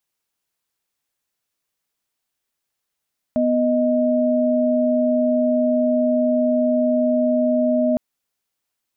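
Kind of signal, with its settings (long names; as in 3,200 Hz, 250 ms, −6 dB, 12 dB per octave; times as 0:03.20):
held notes B3/D#5 sine, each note −18 dBFS 4.61 s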